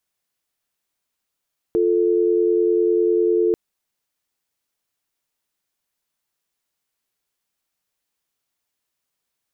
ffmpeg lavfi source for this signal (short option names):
-f lavfi -i "aevalsrc='0.133*(sin(2*PI*350*t)+sin(2*PI*440*t))':d=1.79:s=44100"